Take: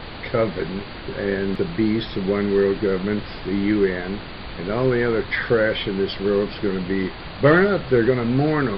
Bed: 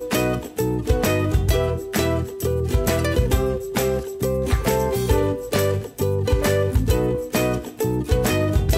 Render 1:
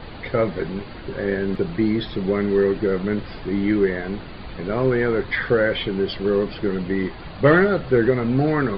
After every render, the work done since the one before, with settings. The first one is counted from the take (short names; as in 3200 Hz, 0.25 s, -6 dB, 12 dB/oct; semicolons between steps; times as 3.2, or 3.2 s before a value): denoiser 7 dB, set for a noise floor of -35 dBFS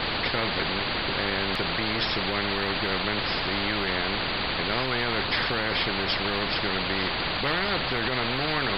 limiter -12 dBFS, peak gain reduction 7 dB; spectral compressor 4:1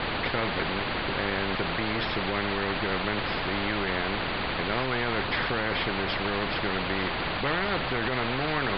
Bessel low-pass 2700 Hz, order 8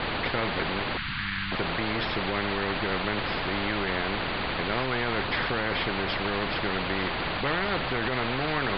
0.97–1.52 Chebyshev band-stop 180–1400 Hz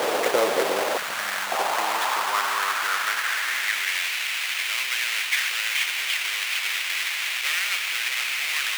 half-waves squared off; high-pass sweep 480 Hz -> 2300 Hz, 0.65–4.06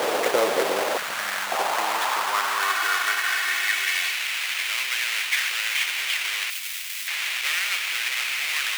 2.6–4.12 comb 2.7 ms; 6.5–7.08 pre-emphasis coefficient 0.8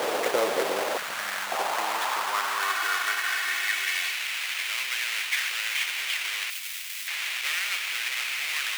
gain -3.5 dB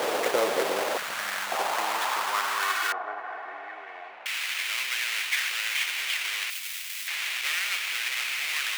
2.92–4.26 synth low-pass 720 Hz, resonance Q 2.9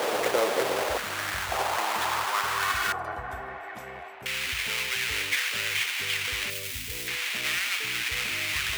add bed -24.5 dB